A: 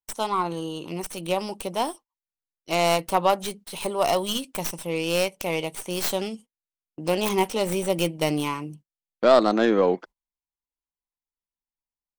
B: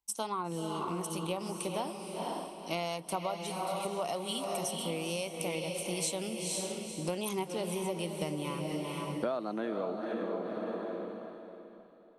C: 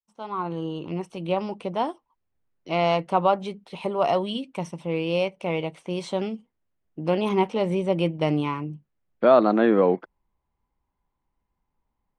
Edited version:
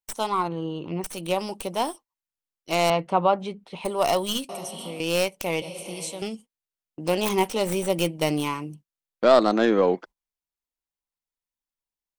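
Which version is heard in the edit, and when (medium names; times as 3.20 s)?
A
0.48–1.04 s: from C
2.90–3.85 s: from C
4.49–5.00 s: from B
5.62–6.22 s: from B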